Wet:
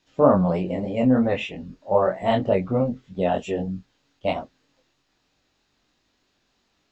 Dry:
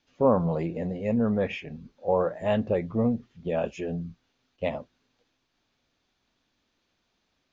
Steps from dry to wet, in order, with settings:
chorus effect 2.9 Hz, depth 3.2 ms
wrong playback speed 44.1 kHz file played as 48 kHz
level +8 dB

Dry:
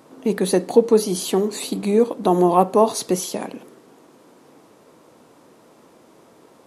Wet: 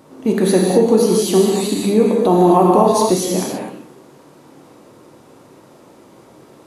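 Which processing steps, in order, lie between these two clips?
low-shelf EQ 220 Hz +7.5 dB
reverb whose tail is shaped and stops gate 280 ms flat, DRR −2 dB
boost into a limiter +1.5 dB
level −1 dB

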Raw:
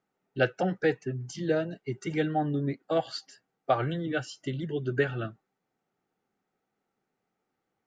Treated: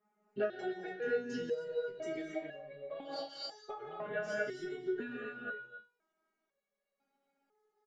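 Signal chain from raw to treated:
low-pass filter 2,300 Hz 6 dB per octave
low-shelf EQ 160 Hz −11 dB
comb filter 4.9 ms, depth 86%
single-tap delay 263 ms −14.5 dB
reverb whose tail is shaped and stops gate 300 ms rising, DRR −0.5 dB
downward compressor 10 to 1, threshold −33 dBFS, peak gain reduction 16 dB
step-sequenced resonator 2 Hz 210–560 Hz
level +12.5 dB

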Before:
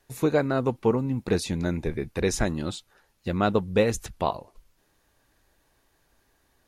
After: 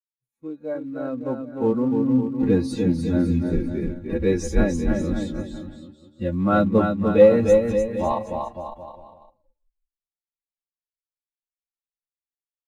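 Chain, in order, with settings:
fade in at the beginning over 1.29 s
noise gate −57 dBFS, range −24 dB
high-shelf EQ 5,300 Hz +5.5 dB
comb filter 3.6 ms, depth 44%
phase-vocoder stretch with locked phases 1.9×
bouncing-ball delay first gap 300 ms, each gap 0.85×, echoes 5
soft clipping −12.5 dBFS, distortion −21 dB
floating-point word with a short mantissa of 2 bits
bass and treble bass +1 dB, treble −6 dB
every bin expanded away from the loudest bin 1.5 to 1
level +8.5 dB

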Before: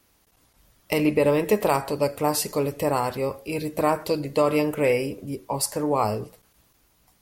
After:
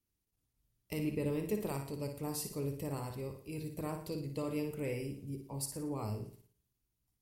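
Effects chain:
parametric band 620 Hz +3 dB 0.77 octaves
noise gate −54 dBFS, range −10 dB
drawn EQ curve 120 Hz 0 dB, 410 Hz −8 dB, 580 Hz −18 dB, 9,100 Hz −6 dB
on a send: flutter between parallel walls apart 9.9 metres, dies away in 0.47 s
on the sum: level −7.5 dB

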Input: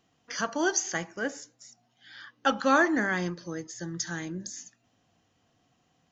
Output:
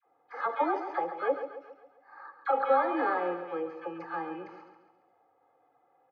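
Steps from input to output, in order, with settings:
samples in bit-reversed order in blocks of 16 samples
comb filter 2.4 ms, depth 86%
brickwall limiter −18.5 dBFS, peak gain reduction 11.5 dB
loudspeaker in its box 360–2,100 Hz, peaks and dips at 380 Hz −4 dB, 560 Hz +10 dB, 830 Hz +7 dB, 1,200 Hz +6 dB, 1,900 Hz −4 dB
all-pass dispersion lows, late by 64 ms, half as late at 800 Hz
on a send: repeating echo 137 ms, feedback 47%, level −10 dB

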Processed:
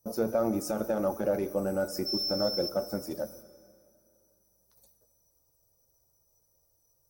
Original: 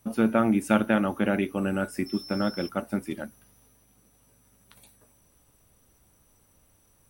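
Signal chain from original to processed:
spectral magnitudes quantised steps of 15 dB
noise gate −52 dBFS, range −13 dB
high-shelf EQ 2,300 Hz +10.5 dB
brickwall limiter −13.5 dBFS, peak gain reduction 8.5 dB
in parallel at −5.5 dB: soft clipping −31 dBFS, distortion −5 dB
on the sum: drawn EQ curve 140 Hz 0 dB, 240 Hz −7 dB, 520 Hz +8 dB, 3,100 Hz −22 dB, 5,400 Hz +5 dB, 9,400 Hz −11 dB, 14,000 Hz +2 dB
dense smooth reverb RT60 2.4 s, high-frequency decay 0.8×, DRR 14.5 dB
level −4.5 dB

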